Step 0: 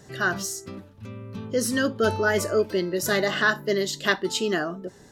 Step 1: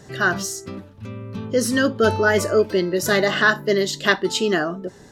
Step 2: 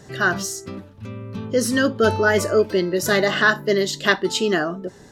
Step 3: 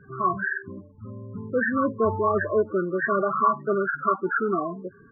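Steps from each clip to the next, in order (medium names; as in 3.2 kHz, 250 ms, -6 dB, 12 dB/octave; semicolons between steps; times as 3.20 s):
treble shelf 8.2 kHz -5.5 dB; trim +5 dB
no audible change
knee-point frequency compression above 1 kHz 4:1; loudest bins only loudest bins 16; trim -5 dB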